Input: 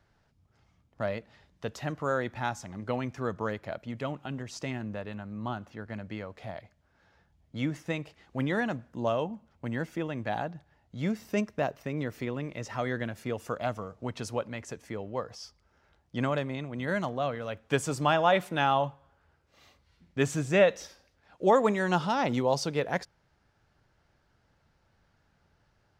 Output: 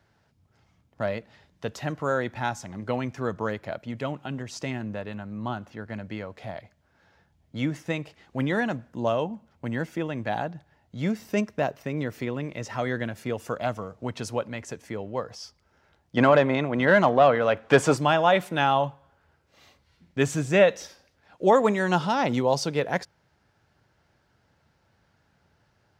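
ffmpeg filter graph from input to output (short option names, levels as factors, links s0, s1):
-filter_complex "[0:a]asettb=1/sr,asplit=3[s0][s1][s2];[s0]atrim=end=16.174[s3];[s1]atrim=start=16.17:end=17.97,asetpts=PTS-STARTPTS,afade=t=in:d=0.004:c=qsin,afade=t=out:st=1.796:d=0.004:c=qsin,acontrast=46,asplit=2[s4][s5];[s5]highpass=f=720:p=1,volume=5.62,asoftclip=type=tanh:threshold=0.473[s6];[s4][s6]amix=inputs=2:normalize=0,lowpass=f=1200:p=1,volume=0.501[s7];[s2]atrim=start=17.966[s8];[s3][s7]acrossfade=d=0.004:c1=hsin:c2=qsin[s9];[s9][s8]acrossfade=d=0.004:c1=qsin:c2=hsin,highpass=69,bandreject=f=1200:w=23,volume=1.5"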